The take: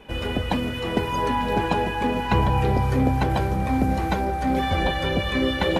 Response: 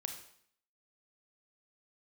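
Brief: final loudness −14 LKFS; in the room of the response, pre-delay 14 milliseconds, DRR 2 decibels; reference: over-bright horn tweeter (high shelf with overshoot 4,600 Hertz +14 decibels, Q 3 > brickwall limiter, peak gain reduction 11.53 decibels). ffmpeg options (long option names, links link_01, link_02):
-filter_complex "[0:a]asplit=2[link_01][link_02];[1:a]atrim=start_sample=2205,adelay=14[link_03];[link_02][link_03]afir=irnorm=-1:irlink=0,volume=-1dB[link_04];[link_01][link_04]amix=inputs=2:normalize=0,highshelf=frequency=4600:width_type=q:width=3:gain=14,volume=12.5dB,alimiter=limit=-5dB:level=0:latency=1"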